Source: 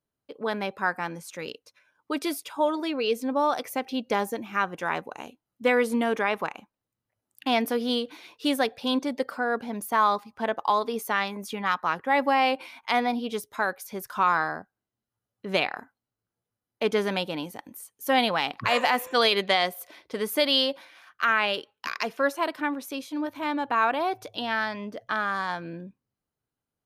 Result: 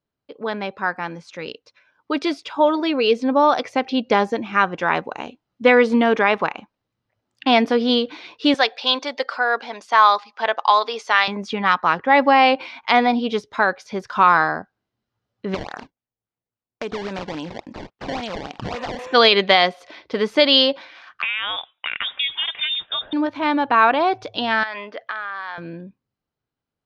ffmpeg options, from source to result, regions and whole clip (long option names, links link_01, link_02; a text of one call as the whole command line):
ffmpeg -i in.wav -filter_complex "[0:a]asettb=1/sr,asplit=3[link_01][link_02][link_03];[link_01]atrim=end=8.544[link_04];[link_02]atrim=start=8.54:end=11.28,asetpts=PTS-STARTPTS,afade=type=in:duration=0.004:curve=qsin,afade=type=out:start_time=2.736:duration=0.004:curve=qsin,highpass=630,lowpass=7500,highshelf=frequency=3300:gain=8[link_05];[link_03]atrim=start=11.276[link_06];[link_04][link_05]acrossfade=duration=0.004:curve1=hsin:curve2=qsin[link_07];[link_07][link_06]acrossfade=duration=0.004:curve1=qsin:curve2=hsin,asettb=1/sr,asplit=3[link_08][link_09][link_10];[link_08]atrim=end=15.544[link_11];[link_09]atrim=start=15.54:end=18.99,asetpts=PTS-STARTPTS,afade=type=in:duration=0.004:curve=qsin,afade=type=out:start_time=3.446:duration=0.004:curve=qsin,agate=range=-15dB:threshold=-55dB:ratio=16:release=100:detection=peak,acompressor=threshold=-34dB:ratio=5:attack=3.2:release=140:knee=1:detection=peak,acrusher=samples=20:mix=1:aa=0.000001:lfo=1:lforange=32:lforate=3.6[link_12];[link_10]atrim=start=18.986[link_13];[link_11][link_12]acrossfade=duration=0.004:curve1=hsin:curve2=qsin[link_14];[link_14][link_13]acrossfade=duration=0.004:curve1=qsin:curve2=hsin,asettb=1/sr,asplit=3[link_15][link_16][link_17];[link_15]atrim=end=21.224[link_18];[link_16]atrim=start=21.22:end=23.13,asetpts=PTS-STARTPTS,afade=type=in:duration=0.004:curve=qsin,afade=type=out:start_time=1.906:duration=0.004:curve=qsin,acompressor=threshold=-27dB:ratio=12:attack=3.2:release=140:knee=1:detection=peak,lowpass=frequency=3300:width_type=q:width=0.5098,lowpass=frequency=3300:width_type=q:width=0.6013,lowpass=frequency=3300:width_type=q:width=0.9,lowpass=frequency=3300:width_type=q:width=2.563,afreqshift=-3900[link_19];[link_17]atrim=start=23.126[link_20];[link_18][link_19]acrossfade=duration=0.004:curve1=hsin:curve2=qsin[link_21];[link_21][link_20]acrossfade=duration=0.004:curve1=qsin:curve2=hsin,asettb=1/sr,asplit=3[link_22][link_23][link_24];[link_22]atrim=end=24.634[link_25];[link_23]atrim=start=24.63:end=25.58,asetpts=PTS-STARTPTS,afade=type=in:duration=0.004:curve=qsin,afade=type=out:start_time=0.946:duration=0.004:curve=qsin,equalizer=frequency=1900:width_type=o:width=1.8:gain=7.5,acompressor=threshold=-29dB:ratio=10:attack=3.2:release=140:knee=1:detection=peak,highpass=470,lowpass=4800[link_26];[link_24]atrim=start=25.576[link_27];[link_25][link_26]acrossfade=duration=0.004:curve1=hsin:curve2=qsin[link_28];[link_28][link_27]acrossfade=duration=0.004:curve1=qsin:curve2=hsin,dynaudnorm=framelen=130:gausssize=31:maxgain=6dB,lowpass=frequency=5200:width=0.5412,lowpass=frequency=5200:width=1.3066,volume=3dB" out.wav